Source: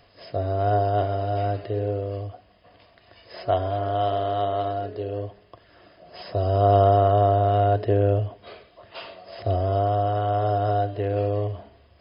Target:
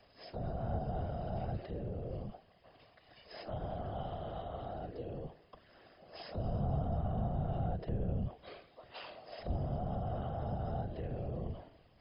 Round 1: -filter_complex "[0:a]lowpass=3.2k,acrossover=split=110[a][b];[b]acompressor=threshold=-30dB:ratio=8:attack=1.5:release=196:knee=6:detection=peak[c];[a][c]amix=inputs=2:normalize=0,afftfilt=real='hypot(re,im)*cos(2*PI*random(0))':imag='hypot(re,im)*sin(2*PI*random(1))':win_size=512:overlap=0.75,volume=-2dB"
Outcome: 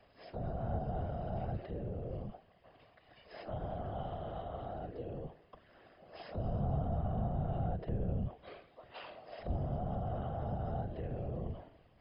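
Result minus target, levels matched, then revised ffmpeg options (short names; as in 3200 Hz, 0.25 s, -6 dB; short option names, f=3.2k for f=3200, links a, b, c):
4000 Hz band -4.0 dB
-filter_complex "[0:a]acrossover=split=110[a][b];[b]acompressor=threshold=-30dB:ratio=8:attack=1.5:release=196:knee=6:detection=peak[c];[a][c]amix=inputs=2:normalize=0,afftfilt=real='hypot(re,im)*cos(2*PI*random(0))':imag='hypot(re,im)*sin(2*PI*random(1))':win_size=512:overlap=0.75,volume=-2dB"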